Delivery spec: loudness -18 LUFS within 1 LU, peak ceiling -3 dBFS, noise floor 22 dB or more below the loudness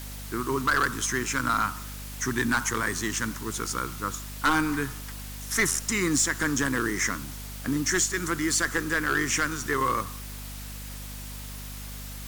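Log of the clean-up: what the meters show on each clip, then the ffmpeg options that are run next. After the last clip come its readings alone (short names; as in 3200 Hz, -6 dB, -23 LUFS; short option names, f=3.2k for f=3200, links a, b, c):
hum 50 Hz; harmonics up to 250 Hz; hum level -37 dBFS; noise floor -38 dBFS; noise floor target -49 dBFS; loudness -26.5 LUFS; peak -14.5 dBFS; loudness target -18.0 LUFS
-> -af "bandreject=f=50:t=h:w=6,bandreject=f=100:t=h:w=6,bandreject=f=150:t=h:w=6,bandreject=f=200:t=h:w=6,bandreject=f=250:t=h:w=6"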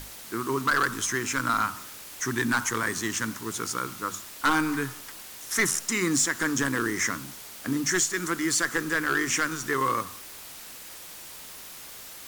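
hum none; noise floor -43 dBFS; noise floor target -49 dBFS
-> -af "afftdn=nr=6:nf=-43"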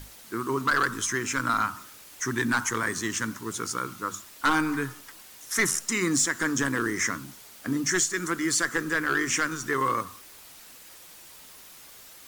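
noise floor -49 dBFS; loudness -27.0 LUFS; peak -14.5 dBFS; loudness target -18.0 LUFS
-> -af "volume=9dB"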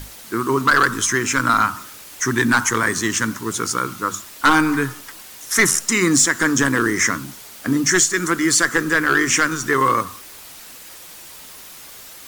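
loudness -18.0 LUFS; peak -5.5 dBFS; noise floor -40 dBFS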